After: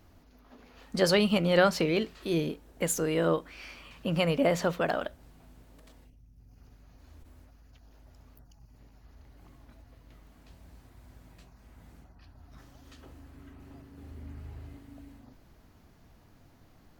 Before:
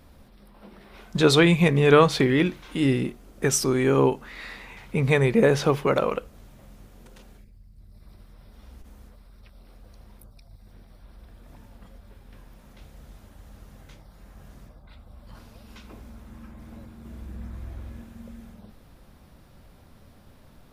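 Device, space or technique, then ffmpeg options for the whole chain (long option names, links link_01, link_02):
nightcore: -af "asetrate=53802,aresample=44100,volume=-6.5dB"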